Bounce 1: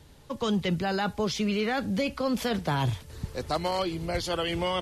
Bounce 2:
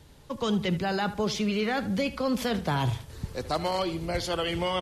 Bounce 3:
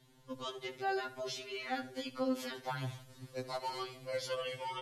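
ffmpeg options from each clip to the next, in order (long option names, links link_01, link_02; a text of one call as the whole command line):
ffmpeg -i in.wav -filter_complex "[0:a]asplit=2[link_01][link_02];[link_02]adelay=76,lowpass=frequency=4000:poles=1,volume=-14.5dB,asplit=2[link_03][link_04];[link_04]adelay=76,lowpass=frequency=4000:poles=1,volume=0.38,asplit=2[link_05][link_06];[link_06]adelay=76,lowpass=frequency=4000:poles=1,volume=0.38,asplit=2[link_07][link_08];[link_08]adelay=76,lowpass=frequency=4000:poles=1,volume=0.38[link_09];[link_01][link_03][link_05][link_07][link_09]amix=inputs=5:normalize=0" out.wav
ffmpeg -i in.wav -filter_complex "[0:a]acrossover=split=310|1400|2300[link_01][link_02][link_03][link_04];[link_01]acompressor=threshold=-37dB:ratio=6[link_05];[link_05][link_02][link_03][link_04]amix=inputs=4:normalize=0,afftfilt=real='re*2.45*eq(mod(b,6),0)':imag='im*2.45*eq(mod(b,6),0)':win_size=2048:overlap=0.75,volume=-7dB" out.wav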